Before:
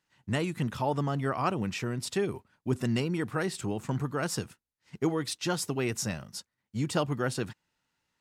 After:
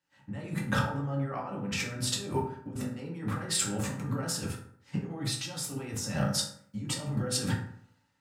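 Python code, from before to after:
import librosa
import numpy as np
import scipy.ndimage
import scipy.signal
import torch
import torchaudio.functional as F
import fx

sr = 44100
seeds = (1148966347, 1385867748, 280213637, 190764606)

y = fx.over_compress(x, sr, threshold_db=-40.0, ratio=-1.0)
y = fx.rev_fdn(y, sr, rt60_s=0.74, lf_ratio=1.05, hf_ratio=0.5, size_ms=11.0, drr_db=-4.5)
y = fx.band_widen(y, sr, depth_pct=40)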